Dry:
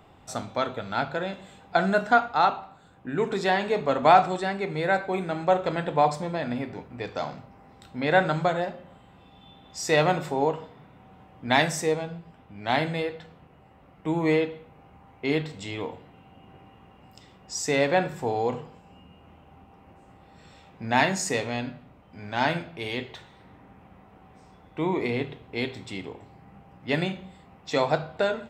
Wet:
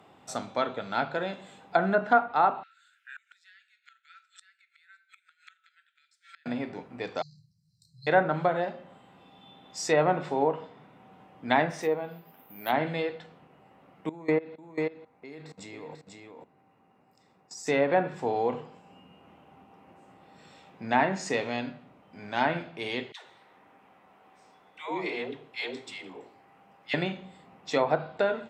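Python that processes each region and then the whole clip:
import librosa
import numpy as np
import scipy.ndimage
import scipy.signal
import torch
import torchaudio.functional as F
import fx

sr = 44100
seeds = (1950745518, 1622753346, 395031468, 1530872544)

y = fx.chain(x, sr, fx.brickwall_highpass(low_hz=1300.0),
    fx.gate_flip(shuts_db=-32.0, range_db=-27), at=(2.63, 6.46))
y = fx.chain(y, sr, fx.brickwall_bandstop(low_hz=170.0, high_hz=3800.0),
    fx.high_shelf(hz=8600.0, db=-7.0),
    fx.notch_comb(f0_hz=1300.0), at=(7.22, 8.07))
y = fx.chain(y, sr, fx.highpass(hz=230.0, slope=6),
    fx.resample_bad(factor=3, down='filtered', up='zero_stuff'), at=(11.7, 12.73))
y = fx.chain(y, sr, fx.peak_eq(hz=3100.0, db=-13.5, octaves=0.27),
    fx.level_steps(step_db=21),
    fx.echo_single(ms=492, db=-4.5), at=(14.09, 17.67))
y = fx.chain(y, sr, fx.peak_eq(hz=130.0, db=-12.5, octaves=2.9),
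    fx.dispersion(late='lows', ms=142.0, hz=570.0), at=(23.12, 26.94))
y = fx.env_lowpass_down(y, sr, base_hz=1600.0, full_db=-18.0)
y = scipy.signal.sosfilt(scipy.signal.butter(2, 170.0, 'highpass', fs=sr, output='sos'), y)
y = y * librosa.db_to_amplitude(-1.0)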